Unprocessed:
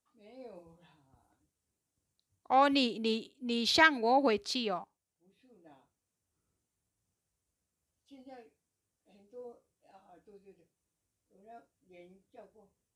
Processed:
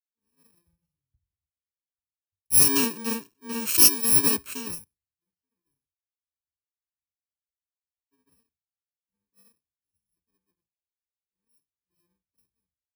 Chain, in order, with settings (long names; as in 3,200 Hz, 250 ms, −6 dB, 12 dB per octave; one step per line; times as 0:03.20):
samples in bit-reversed order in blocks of 64 samples
multiband upward and downward expander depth 100%
level −1 dB